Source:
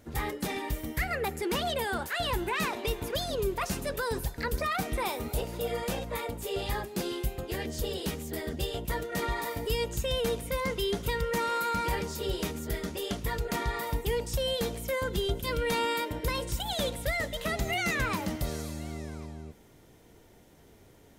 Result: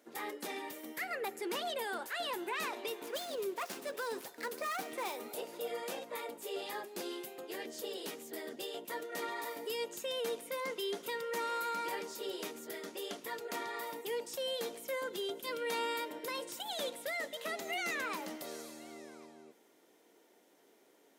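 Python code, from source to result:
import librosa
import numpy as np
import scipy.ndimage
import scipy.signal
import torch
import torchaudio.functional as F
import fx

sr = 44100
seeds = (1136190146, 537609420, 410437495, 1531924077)

y = fx.dead_time(x, sr, dead_ms=0.067, at=(3.02, 5.16))
y = scipy.signal.sosfilt(scipy.signal.butter(4, 280.0, 'highpass', fs=sr, output='sos'), y)
y = F.gain(torch.from_numpy(y), -6.5).numpy()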